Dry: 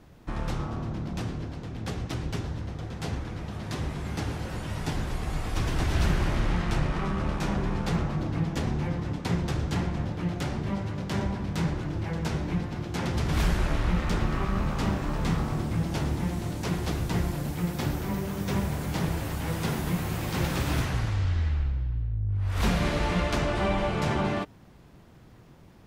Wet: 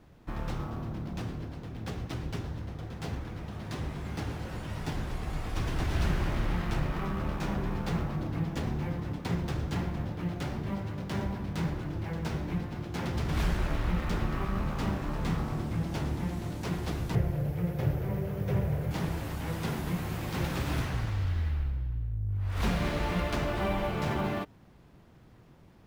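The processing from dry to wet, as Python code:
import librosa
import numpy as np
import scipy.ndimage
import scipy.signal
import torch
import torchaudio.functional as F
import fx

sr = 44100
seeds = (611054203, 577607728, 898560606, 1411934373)

p1 = fx.graphic_eq_10(x, sr, hz=(125, 250, 500, 1000, 4000, 8000), db=(10, -10, 9, -6, -7, -11), at=(17.15, 18.91))
p2 = fx.sample_hold(p1, sr, seeds[0], rate_hz=14000.0, jitter_pct=20)
p3 = p1 + F.gain(torch.from_numpy(p2), -8.5).numpy()
y = F.gain(torch.from_numpy(p3), -6.5).numpy()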